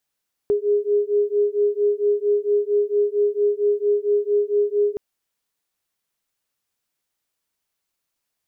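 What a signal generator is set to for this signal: beating tones 410 Hz, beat 4.4 Hz, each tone -20 dBFS 4.47 s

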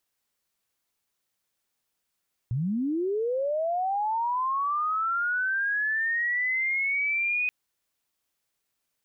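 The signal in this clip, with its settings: chirp linear 110 Hz -> 2500 Hz -24.5 dBFS -> -23.5 dBFS 4.98 s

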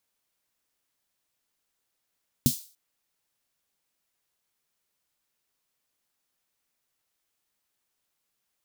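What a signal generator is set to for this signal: snare drum length 0.29 s, tones 140 Hz, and 240 Hz, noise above 3900 Hz, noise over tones -8 dB, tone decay 0.10 s, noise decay 0.39 s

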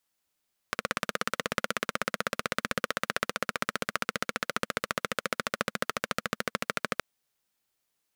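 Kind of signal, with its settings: single-cylinder engine model, changing speed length 6.27 s, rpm 2000, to 1600, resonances 220/510/1300 Hz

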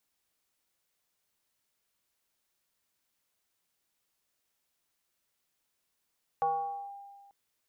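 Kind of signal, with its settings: FM tone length 0.89 s, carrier 800 Hz, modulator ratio 0.4, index 0.61, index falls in 0.50 s linear, decay 1.68 s, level -24 dB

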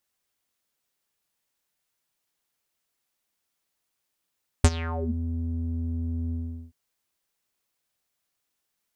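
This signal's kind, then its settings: synth note square E2 12 dB/oct, low-pass 200 Hz, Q 5.8, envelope 5.5 oct, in 0.48 s, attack 2.3 ms, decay 0.05 s, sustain -19 dB, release 0.40 s, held 1.68 s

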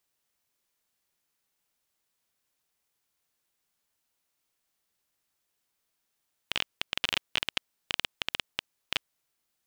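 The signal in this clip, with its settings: random clicks 14/s -9 dBFS 2.49 s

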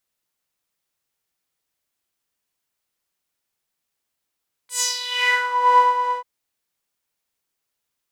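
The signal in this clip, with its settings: synth patch with tremolo B5, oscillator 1 saw, sub -6.5 dB, noise -11.5 dB, filter bandpass, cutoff 810 Hz, Q 3.3, filter envelope 3.5 oct, filter decay 0.92 s, filter sustain 5%, attack 0.116 s, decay 0.13 s, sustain -3 dB, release 0.18 s, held 1.36 s, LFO 2.1 Hz, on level 9 dB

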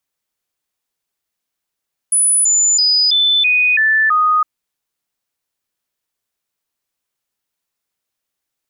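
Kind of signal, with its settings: stepped sine 9940 Hz down, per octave 2, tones 7, 0.33 s, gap 0.00 s -10 dBFS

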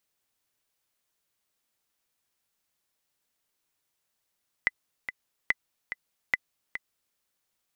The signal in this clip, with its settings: metronome 144 bpm, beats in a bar 2, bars 3, 2010 Hz, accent 10.5 dB -9.5 dBFS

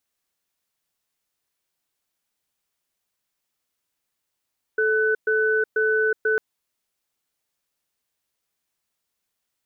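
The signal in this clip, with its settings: cadence 436 Hz, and 1500 Hz, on 0.37 s, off 0.12 s, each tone -20.5 dBFS 1.60 s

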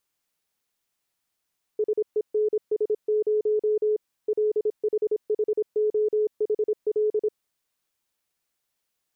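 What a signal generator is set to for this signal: Morse "SENS0 LHHOHL" 26 wpm 426 Hz -19.5 dBFS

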